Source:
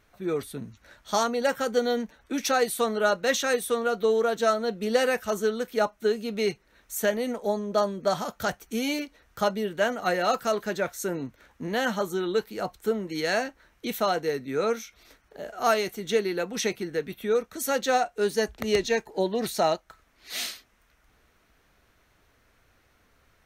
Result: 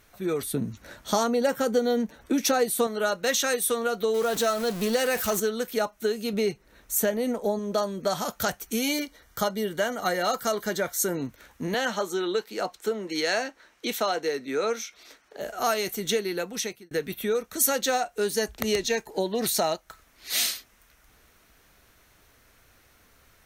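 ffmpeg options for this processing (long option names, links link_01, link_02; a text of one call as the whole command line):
ffmpeg -i in.wav -filter_complex "[0:a]asettb=1/sr,asplit=3[link_01][link_02][link_03];[link_01]atrim=end=0.544[link_04];[link_02]atrim=start=0.54:end=2.87,asetpts=PTS-STARTPTS,afade=type=in:duration=0.004:curve=qsin,afade=type=out:start_time=2.326:duration=0.004:curve=qsin,equalizer=frequency=240:width=0.3:gain=9[link_05];[link_03]atrim=start=2.866[link_06];[link_04][link_05]acrossfade=duration=0.004:curve1=hsin:curve2=qsin[link_07];[link_07][link_06]acrossfade=duration=0.004:curve1=qsin:curve2=hsin,asettb=1/sr,asplit=3[link_08][link_09][link_10];[link_08]atrim=end=4.144[link_11];[link_09]atrim=start=4.14:end=5.4,asetpts=PTS-STARTPTS,afade=type=in:duration=0.004:curve=qsin,afade=type=out:start_time=1.256:duration=0.004:curve=qsin,aeval=exprs='val(0)+0.5*0.0237*sgn(val(0))':channel_layout=same[link_12];[link_10]atrim=start=5.396[link_13];[link_11][link_12]acrossfade=duration=0.004:curve1=hsin:curve2=qsin[link_14];[link_14][link_13]acrossfade=duration=0.004:curve1=qsin:curve2=hsin,asettb=1/sr,asplit=3[link_15][link_16][link_17];[link_15]atrim=end=6.334[link_18];[link_16]atrim=start=6.33:end=7.59,asetpts=PTS-STARTPTS,afade=type=in:duration=0.004:curve=qsin,afade=type=out:start_time=1.256:duration=0.004:curve=qsin,tiltshelf=frequency=1100:gain=4[link_19];[link_17]atrim=start=7.586[link_20];[link_18][link_19]acrossfade=duration=0.004:curve1=hsin:curve2=qsin[link_21];[link_21][link_20]acrossfade=duration=0.004:curve1=qsin:curve2=hsin,asettb=1/sr,asplit=3[link_22][link_23][link_24];[link_22]atrim=end=8.894[link_25];[link_23]atrim=start=8.89:end=11.17,asetpts=PTS-STARTPTS,afade=type=in:duration=0.004:curve=qsin,afade=type=out:start_time=2.276:duration=0.004:curve=qsin,asuperstop=centerf=2600:order=8:qfactor=7.6[link_26];[link_24]atrim=start=11.166[link_27];[link_25][link_26]acrossfade=duration=0.004:curve1=hsin:curve2=qsin[link_28];[link_28][link_27]acrossfade=duration=0.004:curve1=qsin:curve2=hsin,asettb=1/sr,asplit=3[link_29][link_30][link_31];[link_29]atrim=end=11.744[link_32];[link_30]atrim=start=11.74:end=15.41,asetpts=PTS-STARTPTS,afade=type=in:duration=0.004:curve=qsin,afade=type=out:start_time=3.666:duration=0.004:curve=qsin,acrossover=split=220 7900:gain=0.141 1 0.224[link_33][link_34][link_35];[link_33][link_34][link_35]amix=inputs=3:normalize=0[link_36];[link_31]atrim=start=15.406[link_37];[link_32][link_36]acrossfade=duration=0.004:curve1=hsin:curve2=qsin[link_38];[link_38][link_37]acrossfade=duration=0.004:curve1=qsin:curve2=hsin,asplit=2[link_39][link_40];[link_39]atrim=end=16.91,asetpts=PTS-STARTPTS,afade=type=out:start_time=16.16:duration=0.75[link_41];[link_40]atrim=start=16.91,asetpts=PTS-STARTPTS,afade=type=in:duration=0.004:curve=hsin[link_42];[link_41][link_42]concat=n=2:v=0:a=1,acompressor=threshold=-28dB:ratio=2.5,aemphasis=mode=production:type=cd,volume=3.5dB" out.wav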